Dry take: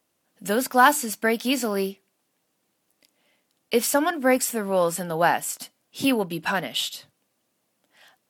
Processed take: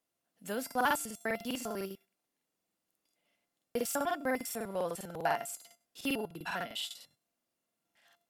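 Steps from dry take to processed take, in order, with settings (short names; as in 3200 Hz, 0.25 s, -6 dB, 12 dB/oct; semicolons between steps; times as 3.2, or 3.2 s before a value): resonator 690 Hz, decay 0.32 s, mix 80%; crackling interface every 0.10 s, samples 2048, repeat, from 0.66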